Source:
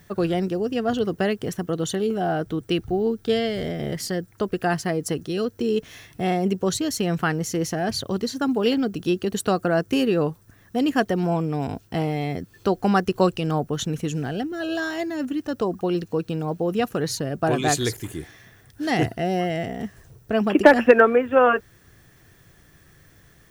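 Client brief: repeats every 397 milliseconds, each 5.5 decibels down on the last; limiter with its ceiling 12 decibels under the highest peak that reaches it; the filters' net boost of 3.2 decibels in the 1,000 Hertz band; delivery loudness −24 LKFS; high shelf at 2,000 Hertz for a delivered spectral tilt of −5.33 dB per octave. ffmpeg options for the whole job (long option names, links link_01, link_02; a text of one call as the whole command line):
ffmpeg -i in.wav -af "equalizer=frequency=1000:width_type=o:gain=5.5,highshelf=frequency=2000:gain=-3,alimiter=limit=-11dB:level=0:latency=1,aecho=1:1:397|794|1191|1588|1985|2382|2779:0.531|0.281|0.149|0.079|0.0419|0.0222|0.0118,volume=-1dB" out.wav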